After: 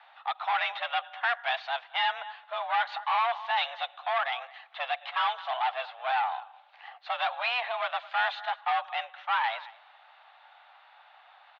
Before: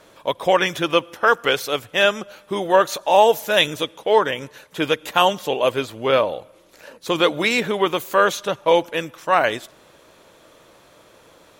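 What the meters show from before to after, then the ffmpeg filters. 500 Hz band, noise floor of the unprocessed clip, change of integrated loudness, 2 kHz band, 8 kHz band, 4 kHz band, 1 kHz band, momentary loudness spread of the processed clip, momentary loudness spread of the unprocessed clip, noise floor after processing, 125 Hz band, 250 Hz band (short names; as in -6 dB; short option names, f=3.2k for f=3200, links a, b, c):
-20.5 dB, -52 dBFS, -10.5 dB, -7.5 dB, under -35 dB, -10.5 dB, -7.0 dB, 9 LU, 10 LU, -57 dBFS, under -40 dB, under -40 dB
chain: -filter_complex "[0:a]asplit=2[a][b];[b]adelay=215.7,volume=-24dB,highshelf=f=4k:g=-4.85[c];[a][c]amix=inputs=2:normalize=0,aeval=exprs='(tanh(10*val(0)+0.35)-tanh(0.35))/10':c=same,highpass=f=460:t=q:w=0.5412,highpass=f=460:t=q:w=1.307,lowpass=f=3.4k:t=q:w=0.5176,lowpass=f=3.4k:t=q:w=0.7071,lowpass=f=3.4k:t=q:w=1.932,afreqshift=250,volume=-2.5dB"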